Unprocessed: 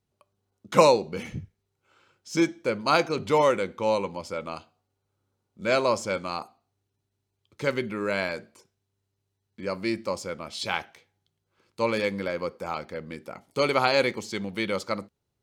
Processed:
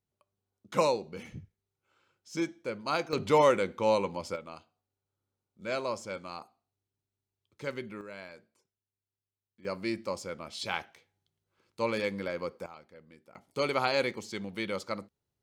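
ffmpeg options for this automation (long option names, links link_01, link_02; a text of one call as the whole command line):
ffmpeg -i in.wav -af "asetnsamples=nb_out_samples=441:pad=0,asendcmd='3.13 volume volume -1.5dB;4.36 volume volume -10dB;8.01 volume volume -17.5dB;9.65 volume volume -5dB;12.66 volume volume -18dB;13.35 volume volume -6dB',volume=-9dB" out.wav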